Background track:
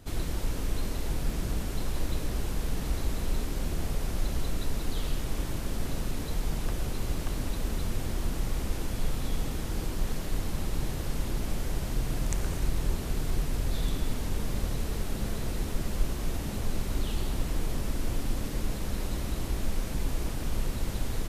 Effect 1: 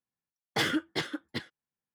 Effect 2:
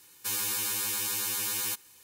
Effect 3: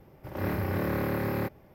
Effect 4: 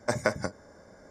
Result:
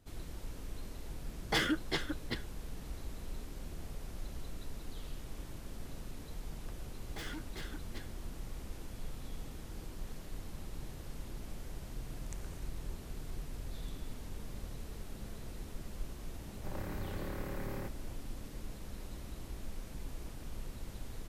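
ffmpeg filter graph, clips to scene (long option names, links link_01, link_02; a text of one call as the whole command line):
ffmpeg -i bed.wav -i cue0.wav -i cue1.wav -i cue2.wav -filter_complex "[1:a]asplit=2[link_01][link_02];[0:a]volume=-13.5dB[link_03];[link_02]asoftclip=type=tanh:threshold=-35.5dB[link_04];[3:a]acompressor=threshold=-37dB:ratio=6:attack=3.2:release=140:knee=1:detection=peak[link_05];[link_01]atrim=end=1.94,asetpts=PTS-STARTPTS,volume=-3dB,afade=type=in:duration=0.004:curve=hsin,afade=type=out:start_time=1.936:duration=0.004:curve=hsin,adelay=960[link_06];[link_04]atrim=end=1.94,asetpts=PTS-STARTPTS,volume=-7.5dB,afade=type=in:duration=0.004:curve=hsin,afade=type=out:start_time=1.936:duration=0.004:curve=hsin,adelay=6600[link_07];[link_05]atrim=end=1.74,asetpts=PTS-STARTPTS,volume=-2.5dB,afade=type=in:duration=0.004:curve=hsin,afade=type=out:start_time=1.736:duration=0.004:curve=hsin,adelay=16400[link_08];[link_03][link_06][link_07][link_08]amix=inputs=4:normalize=0" out.wav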